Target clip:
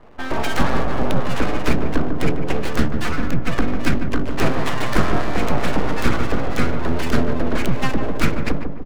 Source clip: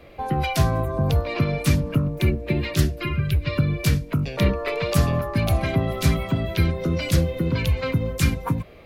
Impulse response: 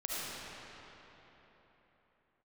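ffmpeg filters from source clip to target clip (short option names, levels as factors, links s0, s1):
-filter_complex "[0:a]equalizer=f=1400:t=o:w=0.39:g=11.5,adynamicsmooth=sensitivity=3:basefreq=780,aeval=exprs='abs(val(0))':c=same,asplit=2[s0][s1];[s1]adelay=148,lowpass=f=980:p=1,volume=0.562,asplit=2[s2][s3];[s3]adelay=148,lowpass=f=980:p=1,volume=0.5,asplit=2[s4][s5];[s5]adelay=148,lowpass=f=980:p=1,volume=0.5,asplit=2[s6][s7];[s7]adelay=148,lowpass=f=980:p=1,volume=0.5,asplit=2[s8][s9];[s9]adelay=148,lowpass=f=980:p=1,volume=0.5,asplit=2[s10][s11];[s11]adelay=148,lowpass=f=980:p=1,volume=0.5[s12];[s2][s4][s6][s8][s10][s12]amix=inputs=6:normalize=0[s13];[s0][s13]amix=inputs=2:normalize=0,volume=1.5"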